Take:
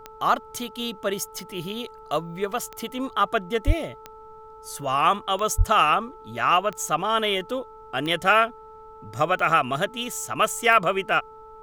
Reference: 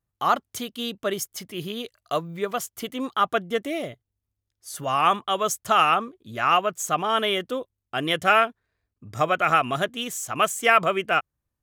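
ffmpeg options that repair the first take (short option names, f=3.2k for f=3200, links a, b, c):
-filter_complex "[0:a]adeclick=t=4,bandreject=f=438.4:t=h:w=4,bandreject=f=876.8:t=h:w=4,bandreject=f=1.3152k:t=h:w=4,asplit=3[a][b][c];[a]afade=t=out:st=3.66:d=0.02[d];[b]highpass=f=140:w=0.5412,highpass=f=140:w=1.3066,afade=t=in:st=3.66:d=0.02,afade=t=out:st=3.78:d=0.02[e];[c]afade=t=in:st=3.78:d=0.02[f];[d][e][f]amix=inputs=3:normalize=0,asplit=3[g][h][i];[g]afade=t=out:st=5.57:d=0.02[j];[h]highpass=f=140:w=0.5412,highpass=f=140:w=1.3066,afade=t=in:st=5.57:d=0.02,afade=t=out:st=5.69:d=0.02[k];[i]afade=t=in:st=5.69:d=0.02[l];[j][k][l]amix=inputs=3:normalize=0,agate=range=-21dB:threshold=-37dB"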